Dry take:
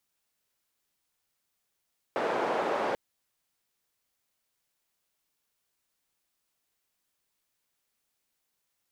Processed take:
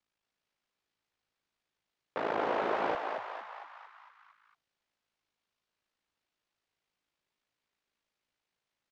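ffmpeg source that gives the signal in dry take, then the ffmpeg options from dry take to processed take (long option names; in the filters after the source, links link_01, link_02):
-f lavfi -i "anoisesrc=color=white:duration=0.79:sample_rate=44100:seed=1,highpass=frequency=450,lowpass=frequency=680,volume=-6.3dB"
-filter_complex "[0:a]lowpass=4100,aeval=exprs='val(0)*sin(2*PI*27*n/s)':channel_layout=same,asplit=2[link_01][link_02];[link_02]asplit=7[link_03][link_04][link_05][link_06][link_07][link_08][link_09];[link_03]adelay=228,afreqshift=94,volume=-5dB[link_10];[link_04]adelay=456,afreqshift=188,volume=-10dB[link_11];[link_05]adelay=684,afreqshift=282,volume=-15.1dB[link_12];[link_06]adelay=912,afreqshift=376,volume=-20.1dB[link_13];[link_07]adelay=1140,afreqshift=470,volume=-25.1dB[link_14];[link_08]adelay=1368,afreqshift=564,volume=-30.2dB[link_15];[link_09]adelay=1596,afreqshift=658,volume=-35.2dB[link_16];[link_10][link_11][link_12][link_13][link_14][link_15][link_16]amix=inputs=7:normalize=0[link_17];[link_01][link_17]amix=inputs=2:normalize=0"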